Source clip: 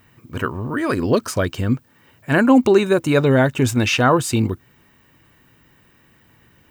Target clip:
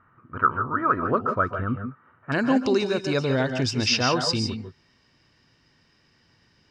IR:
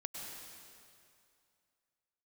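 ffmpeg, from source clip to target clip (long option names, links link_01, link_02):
-filter_complex "[0:a]asetnsamples=nb_out_samples=441:pad=0,asendcmd='2.32 lowpass f 5100',lowpass=frequency=1300:width_type=q:width=10[link_01];[1:a]atrim=start_sample=2205,afade=type=out:start_time=0.17:duration=0.01,atrim=end_sample=7938,asetrate=31311,aresample=44100[link_02];[link_01][link_02]afir=irnorm=-1:irlink=0,volume=-6.5dB"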